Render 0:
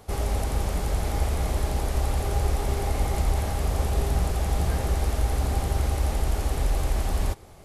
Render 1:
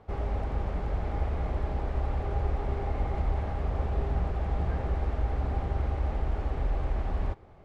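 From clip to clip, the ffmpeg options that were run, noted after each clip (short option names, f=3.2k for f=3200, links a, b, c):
-af "lowpass=2k,volume=-4.5dB"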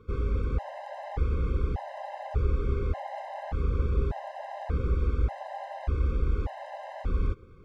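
-af "afftfilt=real='re*gt(sin(2*PI*0.85*pts/sr)*(1-2*mod(floor(b*sr/1024/530),2)),0)':imag='im*gt(sin(2*PI*0.85*pts/sr)*(1-2*mod(floor(b*sr/1024/530),2)),0)':win_size=1024:overlap=0.75,volume=3dB"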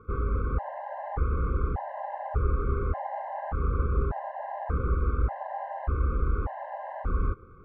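-af "lowpass=f=1.3k:t=q:w=2.8"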